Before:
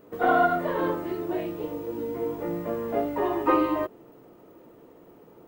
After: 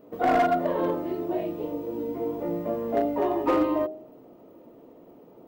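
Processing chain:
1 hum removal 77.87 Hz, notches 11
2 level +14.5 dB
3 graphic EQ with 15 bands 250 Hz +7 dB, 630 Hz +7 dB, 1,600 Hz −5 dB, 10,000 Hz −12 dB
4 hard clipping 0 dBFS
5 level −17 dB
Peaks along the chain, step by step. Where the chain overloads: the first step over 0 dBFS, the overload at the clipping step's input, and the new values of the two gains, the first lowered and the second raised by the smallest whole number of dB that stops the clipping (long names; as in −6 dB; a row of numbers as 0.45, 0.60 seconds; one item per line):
−11.0, +3.5, +7.5, 0.0, −17.0 dBFS
step 2, 7.5 dB
step 2 +6.5 dB, step 5 −9 dB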